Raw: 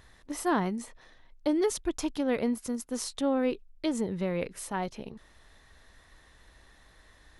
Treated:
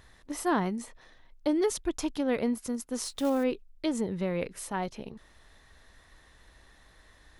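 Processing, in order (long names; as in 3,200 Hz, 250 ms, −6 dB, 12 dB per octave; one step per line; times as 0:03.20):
0:03.04–0:03.45: one scale factor per block 5 bits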